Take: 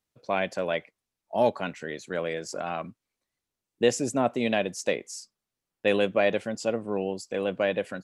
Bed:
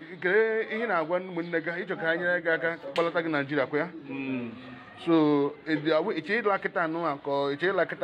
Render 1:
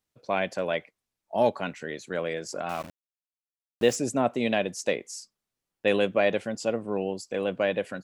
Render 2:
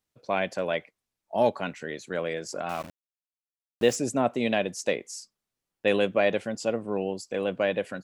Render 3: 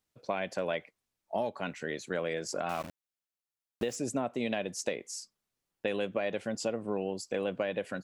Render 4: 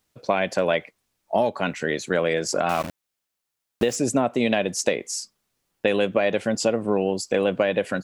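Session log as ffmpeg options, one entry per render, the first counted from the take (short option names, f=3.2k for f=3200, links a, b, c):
-filter_complex "[0:a]asettb=1/sr,asplit=3[a][b][c];[a]atrim=end=2.694[d];[b]atrim=start=2.69:end=3.96,asetpts=PTS-STARTPTS,afade=t=in:d=0.004:c=qsin,afade=t=out:st=1.266:d=0.004:c=qsin,aeval=exprs='val(0)*gte(abs(val(0)),0.0141)':c=same[e];[c]atrim=start=3.956[f];[d][e]acrossfade=d=0.004:c1=hsin:c2=qsin[g];[g][f]acrossfade=d=0.004:c1=qsin:c2=hsin"
-af anull
-af "alimiter=limit=-15dB:level=0:latency=1:release=459,acompressor=threshold=-28dB:ratio=6"
-af "volume=11dB"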